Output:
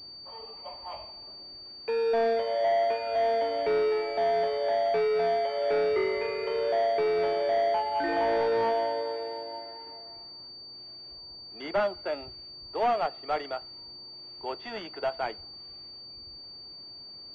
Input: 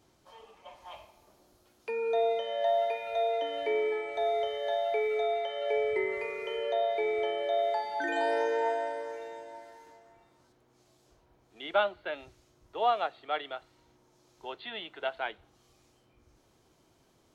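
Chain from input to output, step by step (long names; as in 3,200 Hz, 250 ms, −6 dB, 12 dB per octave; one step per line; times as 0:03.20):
parametric band 1,600 Hz −8.5 dB 0.24 octaves
soft clipping −28 dBFS, distortion −12 dB
switching amplifier with a slow clock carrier 4,600 Hz
level +7 dB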